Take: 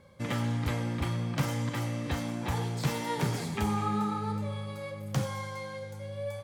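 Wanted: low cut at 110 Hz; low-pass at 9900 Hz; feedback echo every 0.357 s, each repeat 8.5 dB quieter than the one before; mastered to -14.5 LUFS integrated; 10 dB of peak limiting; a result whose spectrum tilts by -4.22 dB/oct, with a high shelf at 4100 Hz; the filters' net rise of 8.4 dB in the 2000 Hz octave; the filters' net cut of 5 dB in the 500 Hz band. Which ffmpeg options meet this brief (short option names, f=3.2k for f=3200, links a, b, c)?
-af "highpass=110,lowpass=9.9k,equalizer=f=500:t=o:g=-6.5,equalizer=f=2k:t=o:g=8.5,highshelf=f=4.1k:g=7.5,alimiter=level_in=0.5dB:limit=-24dB:level=0:latency=1,volume=-0.5dB,aecho=1:1:357|714|1071|1428:0.376|0.143|0.0543|0.0206,volume=19dB"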